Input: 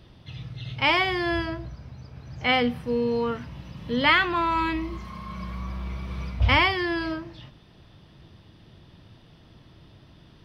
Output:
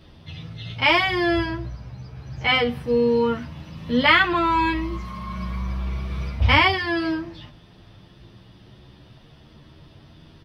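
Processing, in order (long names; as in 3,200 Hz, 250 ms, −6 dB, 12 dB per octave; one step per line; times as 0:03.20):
barber-pole flanger 10.2 ms +0.3 Hz
level +6.5 dB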